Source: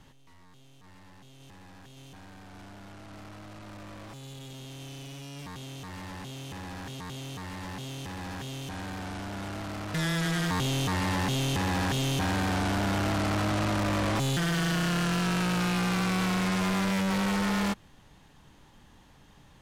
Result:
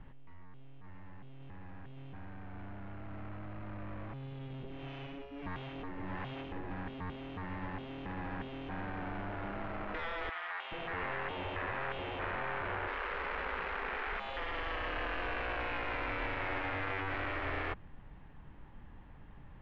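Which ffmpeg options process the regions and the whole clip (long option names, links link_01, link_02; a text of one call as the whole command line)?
ffmpeg -i in.wav -filter_complex "[0:a]asettb=1/sr,asplit=3[link_01][link_02][link_03];[link_01]atrim=end=4.634[link_04];[link_02]atrim=start=4.63:end=6.71,asetpts=PTS-STARTPTS,afade=type=in:duration=0.004:curve=qsin,afade=type=out:start_time=2.076:duration=0.004:curve=qsin,acrossover=split=500[link_05][link_06];[link_05]aeval=exprs='val(0)*(1-0.7/2+0.7/2*cos(2*PI*1.5*n/s))':channel_layout=same[link_07];[link_06]aeval=exprs='val(0)*(1-0.7/2-0.7/2*cos(2*PI*1.5*n/s))':channel_layout=same[link_08];[link_07][link_08]amix=inputs=2:normalize=0,acontrast=55,aphaser=in_gain=1:out_gain=1:delay=3.2:decay=0.26:speed=1.7:type=sinusoidal[link_09];[link_03]atrim=start=6.706[link_10];[link_04][link_09]acrossfade=duration=0.004:curve1=hsin:curve2=qsin[link_11];[link_11][link_10]acrossfade=duration=0.004:curve1=qsin:curve2=hsin,asettb=1/sr,asplit=3[link_12][link_13][link_14];[link_12]atrim=end=10.294[link_15];[link_13]atrim=start=10.29:end=12.88,asetpts=PTS-STARTPTS,afade=type=in:duration=0.004:curve=qsin,afade=type=out:start_time=2.586:duration=0.004:curve=qsin,bass=frequency=250:gain=-9,treble=frequency=4000:gain=-9,acrossover=split=760[link_16][link_17];[link_16]adelay=430[link_18];[link_18][link_17]amix=inputs=2:normalize=0,atrim=end_sample=114219[link_19];[link_14]atrim=start=12.876[link_20];[link_15][link_19]acrossfade=duration=0.004:curve1=hsin:curve2=qsin[link_21];[link_21][link_20]acrossfade=duration=0.004:curve1=qsin:curve2=hsin,lowpass=frequency=2400:width=0.5412,lowpass=frequency=2400:width=1.3066,afftfilt=real='re*lt(hypot(re,im),0.0794)':imag='im*lt(hypot(re,im),0.0794)':win_size=1024:overlap=0.75,lowshelf=frequency=81:gain=11,volume=-1.5dB" out.wav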